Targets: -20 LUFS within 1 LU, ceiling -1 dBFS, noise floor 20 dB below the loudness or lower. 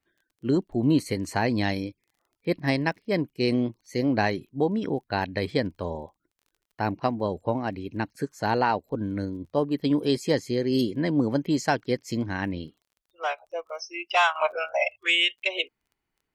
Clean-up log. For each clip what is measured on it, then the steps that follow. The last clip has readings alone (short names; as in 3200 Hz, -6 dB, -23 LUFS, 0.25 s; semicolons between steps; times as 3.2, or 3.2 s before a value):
ticks 21/s; loudness -27.0 LUFS; peak -9.5 dBFS; loudness target -20.0 LUFS
-> de-click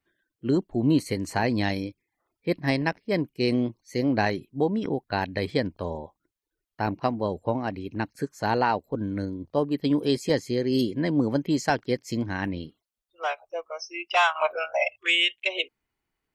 ticks 0.12/s; loudness -27.0 LUFS; peak -9.5 dBFS; loudness target -20.0 LUFS
-> gain +7 dB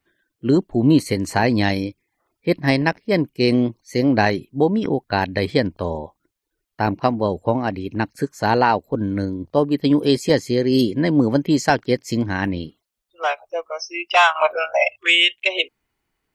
loudness -20.0 LUFS; peak -2.5 dBFS; noise floor -78 dBFS